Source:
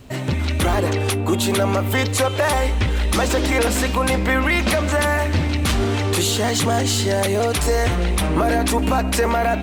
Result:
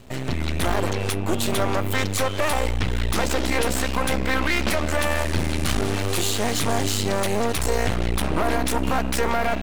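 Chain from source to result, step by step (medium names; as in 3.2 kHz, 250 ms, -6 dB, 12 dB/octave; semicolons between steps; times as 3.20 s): 5.09–6.94 s: mains buzz 400 Hz, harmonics 28, -36 dBFS -1 dB/octave; half-wave rectifier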